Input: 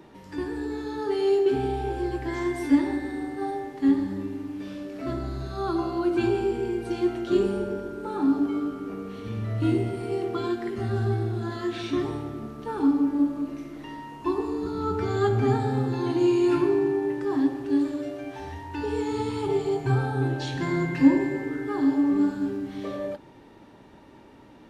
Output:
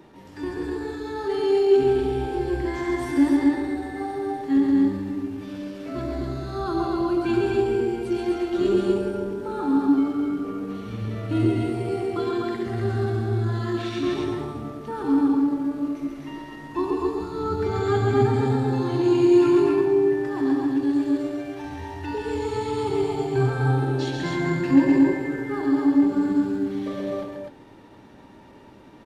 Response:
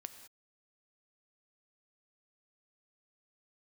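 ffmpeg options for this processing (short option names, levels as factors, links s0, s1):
-af "atempo=0.85,aecho=1:1:134.1|250.7:0.631|0.708"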